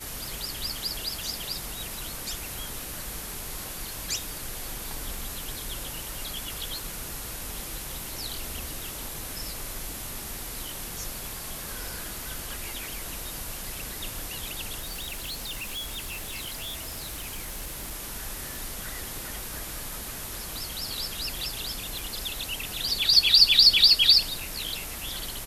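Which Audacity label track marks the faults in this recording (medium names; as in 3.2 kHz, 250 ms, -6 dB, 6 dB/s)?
14.800000	17.940000	clipped -31 dBFS
18.560000	18.560000	pop
21.990000	21.990000	pop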